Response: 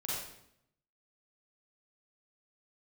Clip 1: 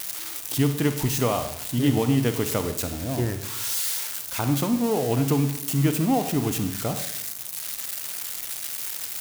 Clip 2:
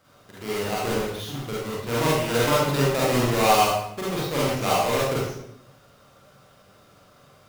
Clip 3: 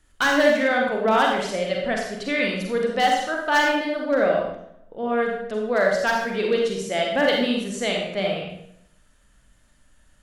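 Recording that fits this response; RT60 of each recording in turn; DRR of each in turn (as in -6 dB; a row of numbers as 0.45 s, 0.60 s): 2; 0.75 s, 0.75 s, 0.75 s; 8.5 dB, -7.5 dB, -0.5 dB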